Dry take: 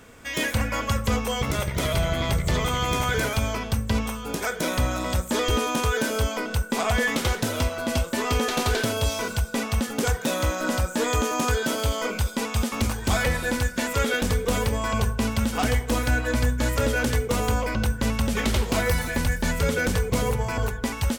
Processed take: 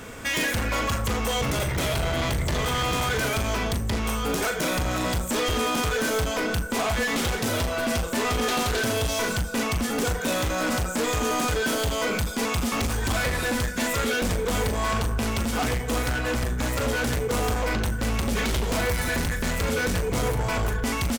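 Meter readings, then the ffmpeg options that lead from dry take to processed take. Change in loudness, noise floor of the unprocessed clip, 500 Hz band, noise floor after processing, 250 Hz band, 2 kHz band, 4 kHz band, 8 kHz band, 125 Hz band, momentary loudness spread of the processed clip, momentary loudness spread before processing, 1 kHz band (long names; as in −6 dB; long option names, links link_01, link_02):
−0.5 dB, −35 dBFS, 0.0 dB, −29 dBFS, −1.0 dB, +0.5 dB, +1.0 dB, +1.0 dB, −2.5 dB, 2 LU, 3 LU, +0.5 dB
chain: -filter_complex "[0:a]acompressor=threshold=-29dB:ratio=2.5,volume=32dB,asoftclip=hard,volume=-32dB,asplit=2[link_01][link_02];[link_02]adelay=39,volume=-9.5dB[link_03];[link_01][link_03]amix=inputs=2:normalize=0,volume=9dB"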